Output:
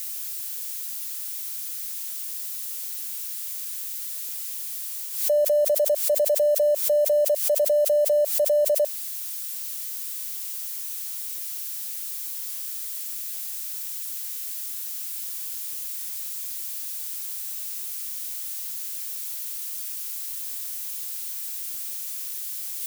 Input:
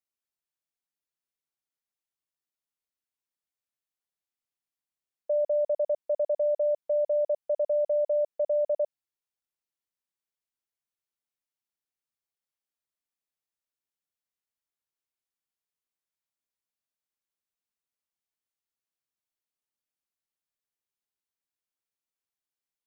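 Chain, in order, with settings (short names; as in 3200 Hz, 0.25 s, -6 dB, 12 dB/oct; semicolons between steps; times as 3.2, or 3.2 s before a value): switching spikes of -37 dBFS; reverse; upward compressor, threshold -32 dBFS; reverse; bell 360 Hz -3 dB 1.2 oct; backwards sustainer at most 74 dB/s; gain +6.5 dB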